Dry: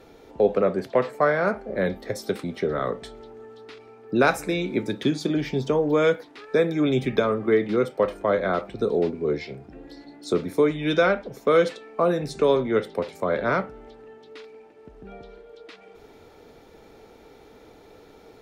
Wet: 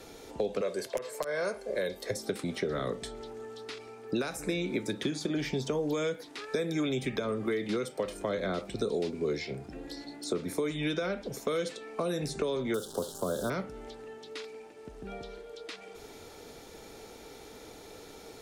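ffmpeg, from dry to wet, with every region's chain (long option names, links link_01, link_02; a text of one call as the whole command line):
ffmpeg -i in.wav -filter_complex "[0:a]asettb=1/sr,asplit=3[link_01][link_02][link_03];[link_01]atrim=end=0.614[link_04];[link_02]atrim=start=0.61:end=2.11,asetpts=PTS-STARTPTS,afade=type=in:duration=0.004:curve=qsin,afade=type=out:start_time=1.496:duration=0.004:curve=qsin,bass=frequency=250:gain=-14,treble=frequency=4000:gain=4,aecho=1:1:1.9:0.43,atrim=end_sample=66150,aeval=exprs='(mod(2.37*val(0)+1,2)-1)/2.37':channel_layout=same[link_05];[link_03]atrim=start=2.106[link_06];[link_04][link_05]acrossfade=duration=0.004:curve1=hsin:curve2=qsin[link_07];[link_07][link_06]acrossfade=duration=0.004:curve1=qsin:curve2=hsin,asettb=1/sr,asplit=3[link_08][link_09][link_10];[link_08]atrim=end=12.744[link_11];[link_09]atrim=start=12.74:end=13.5,asetpts=PTS-STARTPTS,afade=type=in:duration=0.004:curve=qsin,afade=type=out:start_time=0.756:duration=0.004:curve=qsin,acrusher=bits=8:dc=4:mix=0:aa=0.000001,asuperstop=centerf=2200:order=8:qfactor=1.4[link_12];[link_10]atrim=start=13.496[link_13];[link_11][link_12]acrossfade=duration=0.004:curve1=hsin:curve2=qsin[link_14];[link_14][link_13]acrossfade=duration=0.004:curve1=qsin:curve2=hsin,equalizer=frequency=8700:width_type=o:width=2:gain=14,alimiter=limit=-14.5dB:level=0:latency=1:release=194,acrossover=split=490|2400[link_15][link_16][link_17];[link_15]acompressor=threshold=-31dB:ratio=4[link_18];[link_16]acompressor=threshold=-39dB:ratio=4[link_19];[link_17]acompressor=threshold=-43dB:ratio=4[link_20];[link_18][link_19][link_20]amix=inputs=3:normalize=0" out.wav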